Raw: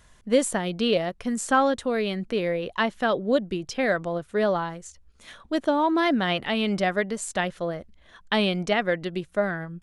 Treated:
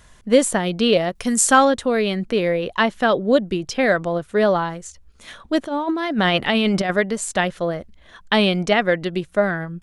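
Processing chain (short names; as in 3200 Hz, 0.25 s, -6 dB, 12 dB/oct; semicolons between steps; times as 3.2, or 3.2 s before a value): 1.15–1.65 high shelf 3700 Hz +11.5 dB; 5.67–6.97 negative-ratio compressor -25 dBFS, ratio -0.5; gain +6 dB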